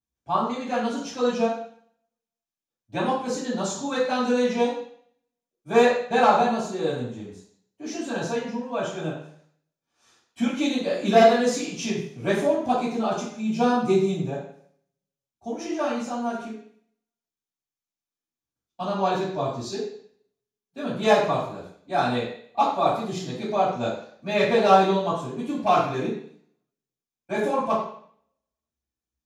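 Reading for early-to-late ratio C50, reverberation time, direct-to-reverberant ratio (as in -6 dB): 2.5 dB, 0.55 s, -10.5 dB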